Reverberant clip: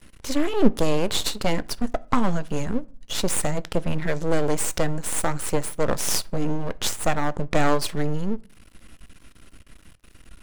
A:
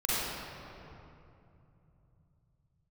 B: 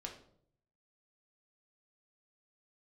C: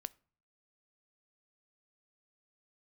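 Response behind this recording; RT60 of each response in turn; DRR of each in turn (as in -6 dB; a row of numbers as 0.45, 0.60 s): C; 2.8 s, 0.65 s, not exponential; -10.5, 0.5, 17.5 dB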